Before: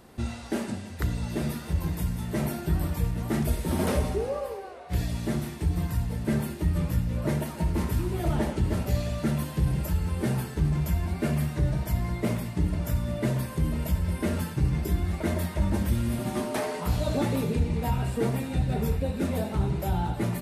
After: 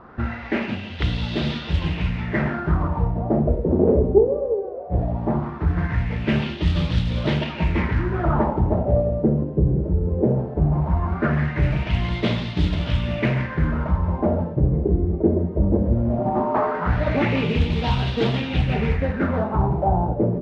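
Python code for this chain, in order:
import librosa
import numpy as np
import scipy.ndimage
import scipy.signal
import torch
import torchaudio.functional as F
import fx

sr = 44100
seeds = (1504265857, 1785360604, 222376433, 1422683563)

y = fx.cvsd(x, sr, bps=32000)
y = fx.mod_noise(y, sr, seeds[0], snr_db=22)
y = fx.filter_lfo_lowpass(y, sr, shape='sine', hz=0.18, low_hz=410.0, high_hz=3500.0, q=3.6)
y = fx.doppler_dist(y, sr, depth_ms=0.26)
y = y * librosa.db_to_amplitude(5.5)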